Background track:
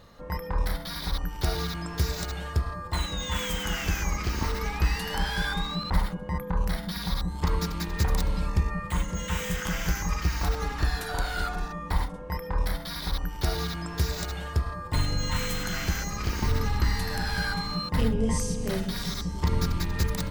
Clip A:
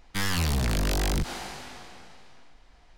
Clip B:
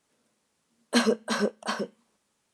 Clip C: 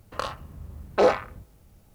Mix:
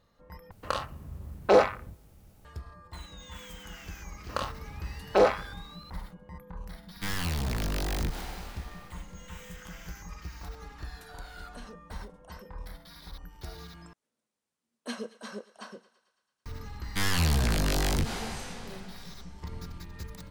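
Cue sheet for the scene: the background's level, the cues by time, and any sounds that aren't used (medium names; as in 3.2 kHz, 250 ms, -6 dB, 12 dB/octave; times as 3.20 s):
background track -15 dB
0.51 s: replace with C -0.5 dB
4.17 s: add C -2 dB
6.87 s: add A -5 dB + sampling jitter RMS 0.022 ms
10.62 s: add B -15.5 dB + compression 3:1, threshold -31 dBFS
13.93 s: replace with B -14.5 dB + thinning echo 111 ms, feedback 66%, high-pass 550 Hz, level -17.5 dB
16.81 s: add A -0.5 dB + doubling 13 ms -11 dB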